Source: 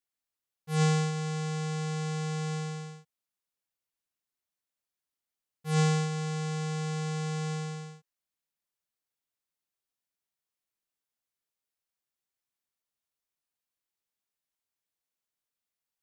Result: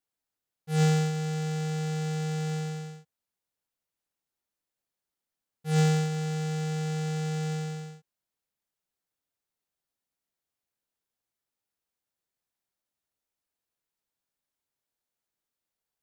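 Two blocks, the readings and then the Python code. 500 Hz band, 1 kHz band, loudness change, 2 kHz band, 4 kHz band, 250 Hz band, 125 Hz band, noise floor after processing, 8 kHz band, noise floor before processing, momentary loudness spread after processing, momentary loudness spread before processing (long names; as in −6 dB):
+2.0 dB, 0.0 dB, +2.0 dB, 0.0 dB, 0.0 dB, can't be measured, +2.5 dB, below −85 dBFS, 0.0 dB, below −85 dBFS, 12 LU, 13 LU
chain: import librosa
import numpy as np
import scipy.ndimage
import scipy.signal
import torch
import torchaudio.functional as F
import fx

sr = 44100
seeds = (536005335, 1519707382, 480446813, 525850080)

p1 = fx.notch(x, sr, hz=1100.0, q=7.8)
p2 = fx.sample_hold(p1, sr, seeds[0], rate_hz=3200.0, jitter_pct=0)
y = p1 + (p2 * librosa.db_to_amplitude(-10.0))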